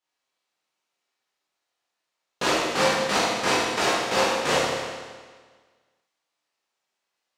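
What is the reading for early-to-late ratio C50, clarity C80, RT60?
−2.5 dB, 0.0 dB, 1.5 s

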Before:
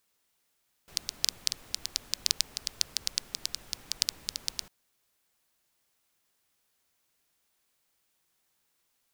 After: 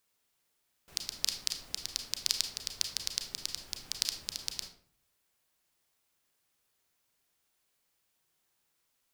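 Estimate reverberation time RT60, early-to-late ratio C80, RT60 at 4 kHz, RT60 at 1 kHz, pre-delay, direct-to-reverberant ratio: 0.55 s, 12.5 dB, 0.35 s, 0.50 s, 29 ms, 5.5 dB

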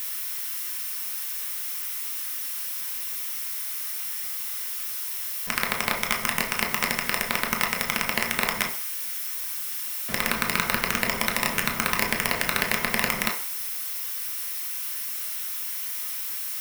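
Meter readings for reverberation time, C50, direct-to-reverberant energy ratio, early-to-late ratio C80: 0.50 s, 9.5 dB, 0.5 dB, 13.5 dB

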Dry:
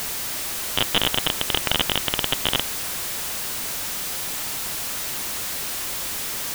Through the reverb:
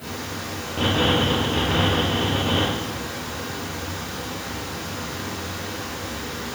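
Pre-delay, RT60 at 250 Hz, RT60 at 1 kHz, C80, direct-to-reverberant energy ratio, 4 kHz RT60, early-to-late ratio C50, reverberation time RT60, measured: 3 ms, can't be measured, 0.95 s, 1.0 dB, −13.5 dB, 0.80 s, −2.5 dB, 1.1 s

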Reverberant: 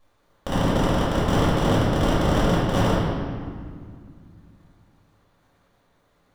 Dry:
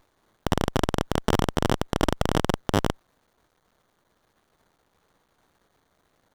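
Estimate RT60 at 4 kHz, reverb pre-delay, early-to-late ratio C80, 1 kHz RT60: 1.3 s, 3 ms, −0.5 dB, 2.0 s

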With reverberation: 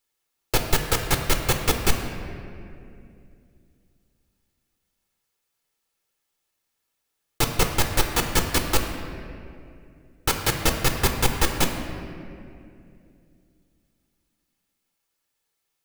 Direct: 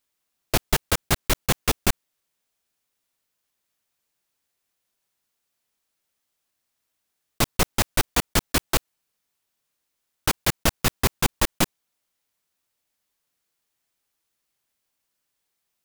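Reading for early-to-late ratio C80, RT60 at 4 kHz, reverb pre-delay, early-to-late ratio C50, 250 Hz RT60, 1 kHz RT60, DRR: 6.5 dB, 1.5 s, 6 ms, 5.5 dB, 3.3 s, 2.2 s, 3.5 dB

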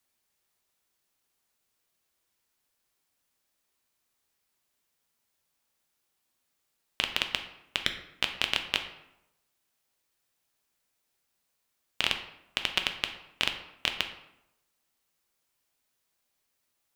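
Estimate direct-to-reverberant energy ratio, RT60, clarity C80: 5.0 dB, 0.85 s, 11.5 dB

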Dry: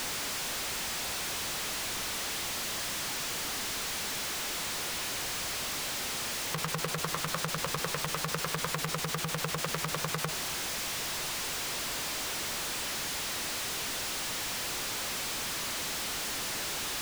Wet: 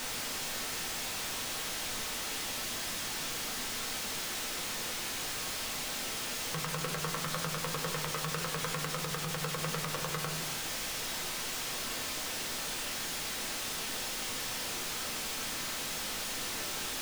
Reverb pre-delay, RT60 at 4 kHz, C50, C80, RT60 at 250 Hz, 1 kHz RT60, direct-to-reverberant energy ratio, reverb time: 4 ms, 0.55 s, 9.0 dB, 11.5 dB, 1.0 s, 0.65 s, 1.5 dB, 0.80 s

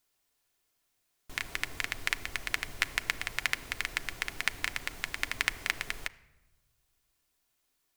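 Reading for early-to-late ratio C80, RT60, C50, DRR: 20.5 dB, 1.1 s, 19.0 dB, 8.5 dB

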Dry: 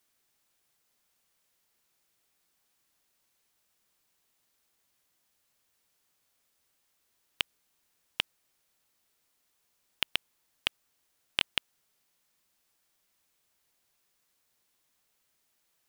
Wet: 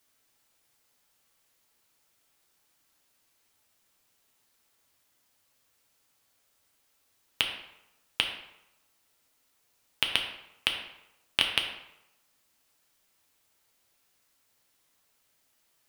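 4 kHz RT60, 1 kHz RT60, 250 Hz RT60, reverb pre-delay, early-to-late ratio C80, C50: 0.60 s, 0.90 s, 0.75 s, 3 ms, 8.5 dB, 6.0 dB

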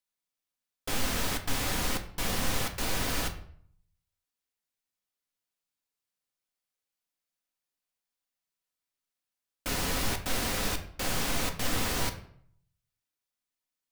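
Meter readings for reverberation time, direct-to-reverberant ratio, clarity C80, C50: 0.60 s, 5.0 dB, 14.5 dB, 11.0 dB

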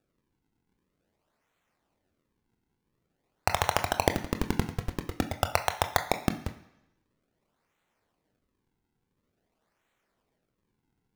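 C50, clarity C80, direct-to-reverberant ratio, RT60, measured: 11.5 dB, 14.5 dB, 6.0 dB, 1.0 s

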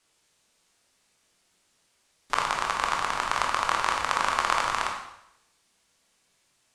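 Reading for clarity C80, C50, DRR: 7.5 dB, 4.0 dB, 0.0 dB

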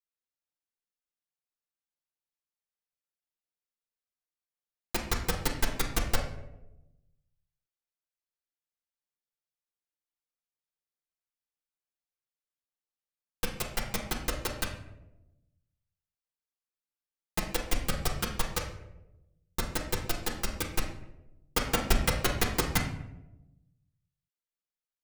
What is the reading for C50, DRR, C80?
6.5 dB, −0.5 dB, 10.0 dB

